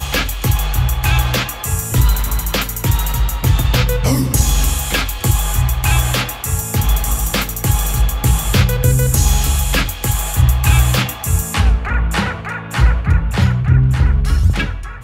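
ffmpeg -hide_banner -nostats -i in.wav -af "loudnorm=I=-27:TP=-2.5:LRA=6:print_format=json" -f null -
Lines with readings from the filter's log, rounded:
"input_i" : "-16.2",
"input_tp" : "-2.4",
"input_lra" : "1.6",
"input_thresh" : "-26.2",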